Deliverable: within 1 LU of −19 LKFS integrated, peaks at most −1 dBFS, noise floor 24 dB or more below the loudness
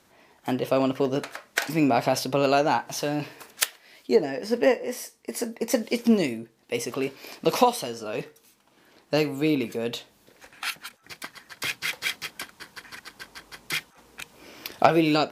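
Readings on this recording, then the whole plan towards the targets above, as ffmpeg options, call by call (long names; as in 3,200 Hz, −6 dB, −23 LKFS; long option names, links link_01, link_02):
integrated loudness −26.0 LKFS; sample peak −4.0 dBFS; target loudness −19.0 LKFS
→ -af "volume=7dB,alimiter=limit=-1dB:level=0:latency=1"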